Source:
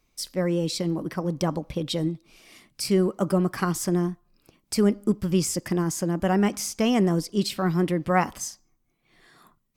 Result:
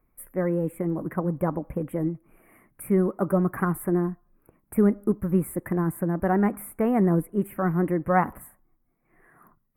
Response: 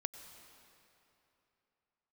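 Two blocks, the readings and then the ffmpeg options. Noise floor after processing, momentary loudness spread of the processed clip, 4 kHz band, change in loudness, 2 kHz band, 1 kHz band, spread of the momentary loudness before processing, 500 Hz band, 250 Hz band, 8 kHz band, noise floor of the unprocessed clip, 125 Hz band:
−71 dBFS, 9 LU, below −30 dB, −0.5 dB, −1.5 dB, +0.5 dB, 8 LU, 0.0 dB, 0.0 dB, −12.5 dB, −71 dBFS, 0.0 dB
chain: -af "asuperstop=centerf=4800:order=8:qfactor=0.56,aphaser=in_gain=1:out_gain=1:delay=4.5:decay=0.21:speed=0.84:type=triangular"

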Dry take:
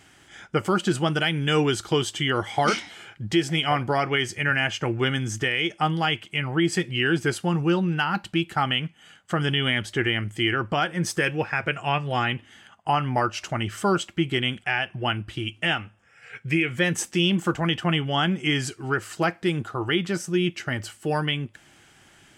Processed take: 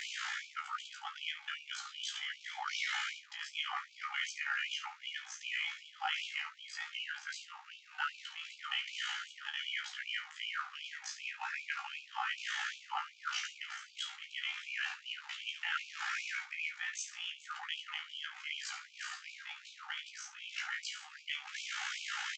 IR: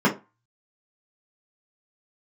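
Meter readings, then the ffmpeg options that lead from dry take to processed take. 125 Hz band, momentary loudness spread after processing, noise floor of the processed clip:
below −40 dB, 7 LU, −58 dBFS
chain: -filter_complex "[0:a]aeval=exprs='val(0)+0.5*0.0422*sgn(val(0))':channel_layout=same,highshelf=frequency=3100:gain=-10.5,bandreject=frequency=980:width=7.5,areverse,acompressor=threshold=-32dB:ratio=6,areverse,tremolo=f=56:d=0.889,aresample=16000,aresample=44100,asplit=2[link_01][link_02];[link_02]adelay=13,volume=-4.5dB[link_03];[link_01][link_03]amix=inputs=2:normalize=0,aecho=1:1:26|70:0.398|0.237,asplit=2[link_04][link_05];[1:a]atrim=start_sample=2205[link_06];[link_05][link_06]afir=irnorm=-1:irlink=0,volume=-27.5dB[link_07];[link_04][link_07]amix=inputs=2:normalize=0,afftfilt=real='re*gte(b*sr/1024,730*pow(2300/730,0.5+0.5*sin(2*PI*2.6*pts/sr)))':imag='im*gte(b*sr/1024,730*pow(2300/730,0.5+0.5*sin(2*PI*2.6*pts/sr)))':win_size=1024:overlap=0.75,volume=2dB"

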